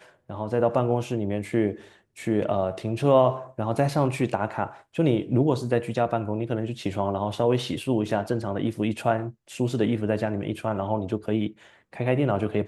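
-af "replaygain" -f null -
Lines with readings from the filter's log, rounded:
track_gain = +6.0 dB
track_peak = 0.321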